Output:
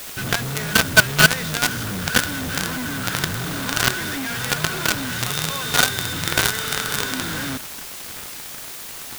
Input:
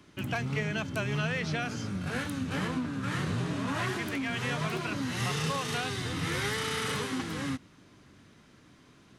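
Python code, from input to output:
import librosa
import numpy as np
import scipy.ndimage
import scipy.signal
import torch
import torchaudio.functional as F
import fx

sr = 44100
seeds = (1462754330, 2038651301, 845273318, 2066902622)

p1 = fx.low_shelf(x, sr, hz=68.0, db=11.0)
p2 = fx.rider(p1, sr, range_db=10, speed_s=0.5)
p3 = p1 + (p2 * 10.0 ** (1.0 / 20.0))
p4 = fx.small_body(p3, sr, hz=(1500.0, 3600.0), ring_ms=30, db=17)
p5 = fx.quant_companded(p4, sr, bits=2)
p6 = fx.dmg_noise_colour(p5, sr, seeds[0], colour='white', level_db=-33.0)
y = p6 * 10.0 ** (-2.0 / 20.0)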